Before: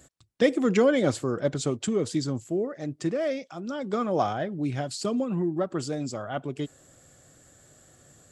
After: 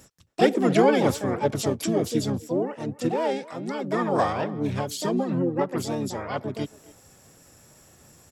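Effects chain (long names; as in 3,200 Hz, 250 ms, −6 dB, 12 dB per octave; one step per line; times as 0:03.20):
pitch-shifted copies added −5 semitones −5 dB, +7 semitones −4 dB
far-end echo of a speakerphone 270 ms, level −19 dB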